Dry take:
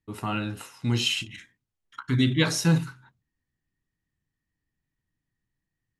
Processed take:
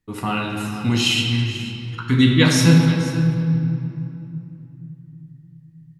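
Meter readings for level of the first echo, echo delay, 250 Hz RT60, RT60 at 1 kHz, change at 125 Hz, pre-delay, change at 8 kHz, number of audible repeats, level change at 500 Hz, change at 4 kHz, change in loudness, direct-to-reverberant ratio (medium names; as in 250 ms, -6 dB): -15.0 dB, 490 ms, 4.4 s, 2.8 s, +10.5 dB, 4 ms, +7.0 dB, 1, +8.0 dB, +7.5 dB, +7.0 dB, 0.5 dB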